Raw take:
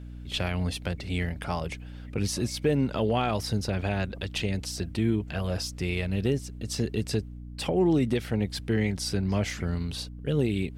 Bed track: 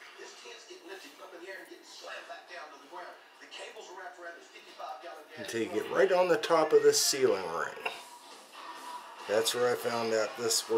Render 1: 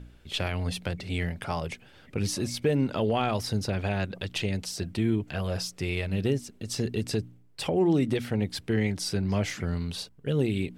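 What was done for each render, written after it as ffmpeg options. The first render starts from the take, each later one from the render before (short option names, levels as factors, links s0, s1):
-af "bandreject=f=60:t=h:w=4,bandreject=f=120:t=h:w=4,bandreject=f=180:t=h:w=4,bandreject=f=240:t=h:w=4,bandreject=f=300:t=h:w=4"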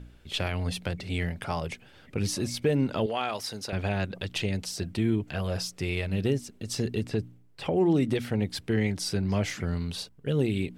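-filter_complex "[0:a]asettb=1/sr,asplit=3[s0][s1][s2];[s0]atrim=end=3.064[s3];[s1]atrim=start=3.06:end=3.73,asetpts=PTS-STARTPTS,afade=t=in:d=0.004:c=qsin,afade=t=out:st=0.666:d=0.004:c=qsin,highpass=f=710:p=1[s4];[s2]atrim=start=3.726[s5];[s3][s4]acrossfade=d=0.004:c1=hsin:c2=qsin[s6];[s6][s5]acrossfade=d=0.004:c1=qsin:c2=hsin,asettb=1/sr,asplit=3[s7][s8][s9];[s7]atrim=end=6.994[s10];[s8]atrim=start=6.99:end=7.96,asetpts=PTS-STARTPTS,afade=t=in:d=0.004:c=qsin,afade=t=out:st=0.966:d=0.004:c=qsin,acrossover=split=3100[s11][s12];[s12]acompressor=threshold=0.00316:ratio=4:attack=1:release=60[s13];[s11][s13]amix=inputs=2:normalize=0[s14];[s9]atrim=start=7.956[s15];[s10][s14]acrossfade=d=0.004:c1=hsin:c2=qsin[s16];[s16][s15]acrossfade=d=0.004:c1=qsin:c2=hsin"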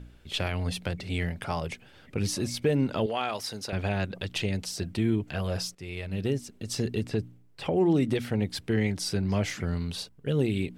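-filter_complex "[0:a]asplit=2[s0][s1];[s0]atrim=end=5.75,asetpts=PTS-STARTPTS,afade=t=out:st=5.746:d=0.004:c=hsin:silence=0.223872[s2];[s1]atrim=start=5.75,asetpts=PTS-STARTPTS,afade=t=in:d=1.03:c=qsin:silence=0.223872[s3];[s2][s3]concat=n=2:v=0:a=1"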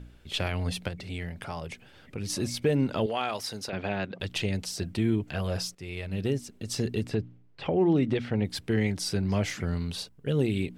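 -filter_complex "[0:a]asettb=1/sr,asplit=3[s0][s1][s2];[s0]atrim=end=0.884[s3];[s1]atrim=start=0.88:end=2.3,asetpts=PTS-STARTPTS,afade=t=in:d=0.004:c=qsin,afade=t=out:st=1.416:d=0.004:c=qsin,acompressor=threshold=0.01:ratio=1.5:attack=3.2:release=140:knee=1:detection=peak[s4];[s2]atrim=start=2.296[s5];[s3][s4]acrossfade=d=0.004:c1=hsin:c2=qsin[s6];[s6][s5]acrossfade=d=0.004:c1=qsin:c2=hsin,asettb=1/sr,asplit=3[s7][s8][s9];[s7]atrim=end=3.694[s10];[s8]atrim=start=3.69:end=4.2,asetpts=PTS-STARTPTS,afade=t=in:d=0.004:c=qsin,afade=t=out:st=0.506:d=0.004:c=qsin,highpass=160,lowpass=4100[s11];[s9]atrim=start=4.196[s12];[s10][s11]acrossfade=d=0.004:c1=hsin:c2=qsin[s13];[s13][s12]acrossfade=d=0.004:c1=qsin:c2=hsin,asettb=1/sr,asplit=3[s14][s15][s16];[s14]atrim=end=7.154[s17];[s15]atrim=start=7.15:end=8.45,asetpts=PTS-STARTPTS,afade=t=in:d=0.004:c=qsin,afade=t=out:st=1.296:d=0.004:c=qsin,lowpass=3900[s18];[s16]atrim=start=8.446[s19];[s17][s18]acrossfade=d=0.004:c1=hsin:c2=qsin[s20];[s20][s19]acrossfade=d=0.004:c1=qsin:c2=hsin"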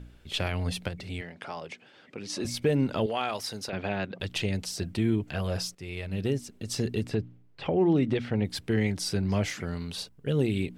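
-filter_complex "[0:a]asettb=1/sr,asplit=3[s0][s1][s2];[s0]atrim=end=1.214[s3];[s1]atrim=start=1.21:end=2.45,asetpts=PTS-STARTPTS,afade=t=in:d=0.004:c=qsin,afade=t=out:st=1.236:d=0.004:c=qsin,highpass=240,lowpass=6300[s4];[s2]atrim=start=2.446[s5];[s3][s4]acrossfade=d=0.004:c1=hsin:c2=qsin[s6];[s6][s5]acrossfade=d=0.004:c1=qsin:c2=hsin,asettb=1/sr,asplit=3[s7][s8][s9];[s7]atrim=end=9.484[s10];[s8]atrim=start=9.48:end=9.98,asetpts=PTS-STARTPTS,afade=t=in:d=0.004:c=qsin,afade=t=out:st=0.496:d=0.004:c=qsin,lowshelf=f=140:g=-8.5[s11];[s9]atrim=start=9.976[s12];[s10][s11]acrossfade=d=0.004:c1=hsin:c2=qsin[s13];[s13][s12]acrossfade=d=0.004:c1=qsin:c2=hsin"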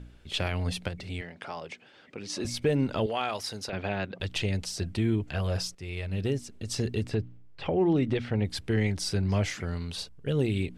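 -af "lowpass=11000,asubboost=boost=2.5:cutoff=90"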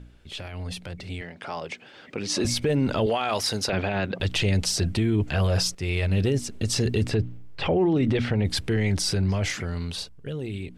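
-af "alimiter=level_in=1.26:limit=0.0631:level=0:latency=1:release=16,volume=0.794,dynaudnorm=f=390:g=9:m=3.35"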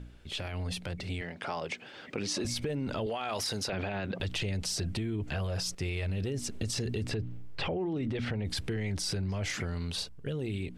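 -af "alimiter=limit=0.0944:level=0:latency=1:release=20,acompressor=threshold=0.0316:ratio=6"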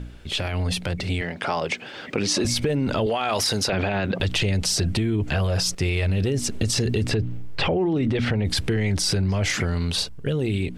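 -af "volume=3.35"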